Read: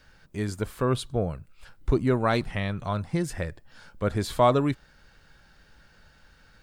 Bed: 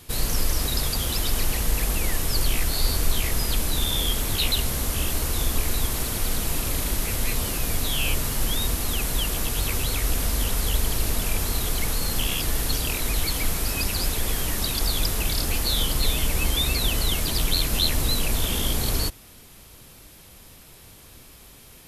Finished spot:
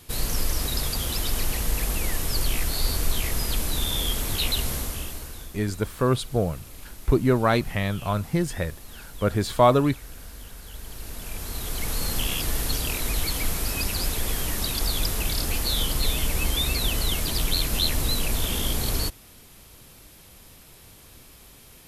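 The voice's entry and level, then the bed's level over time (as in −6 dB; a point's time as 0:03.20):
5.20 s, +3.0 dB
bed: 0:04.74 −2 dB
0:05.55 −18 dB
0:10.65 −18 dB
0:12.01 −1.5 dB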